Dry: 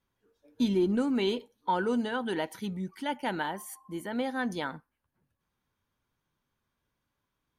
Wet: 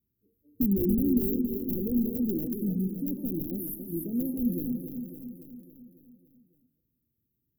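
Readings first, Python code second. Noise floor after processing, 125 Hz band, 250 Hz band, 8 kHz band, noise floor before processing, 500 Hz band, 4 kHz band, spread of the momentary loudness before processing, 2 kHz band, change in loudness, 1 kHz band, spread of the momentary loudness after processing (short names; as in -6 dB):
-80 dBFS, +6.0 dB, +4.0 dB, -1.0 dB, -83 dBFS, -3.5 dB, under -40 dB, 11 LU, under -40 dB, +2.0 dB, under -30 dB, 15 LU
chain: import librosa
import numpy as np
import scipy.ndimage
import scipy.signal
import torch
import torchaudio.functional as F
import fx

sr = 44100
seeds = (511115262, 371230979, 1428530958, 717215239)

p1 = fx.reverse_delay_fb(x, sr, ms=143, feedback_pct=41, wet_db=-9.5)
p2 = scipy.signal.sosfilt(scipy.signal.butter(2, 47.0, 'highpass', fs=sr, output='sos'), p1)
p3 = fx.cheby_harmonics(p2, sr, harmonics=(2, 5, 7), levels_db=(-36, -43, -40), full_scale_db=-16.0)
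p4 = fx.high_shelf(p3, sr, hz=2700.0, db=12.0)
p5 = fx.level_steps(p4, sr, step_db=19)
p6 = p4 + F.gain(torch.from_numpy(p5), 3.0).numpy()
p7 = (np.mod(10.0 ** (17.0 / 20.0) * p6 + 1.0, 2.0) - 1.0) / 10.0 ** (17.0 / 20.0)
p8 = scipy.signal.sosfilt(scipy.signal.cheby2(4, 60, [1000.0, 6400.0], 'bandstop', fs=sr, output='sos'), p7)
p9 = p8 + fx.echo_feedback(p8, sr, ms=278, feedback_pct=59, wet_db=-8.0, dry=0)
y = F.gain(torch.from_numpy(p9), 1.0).numpy()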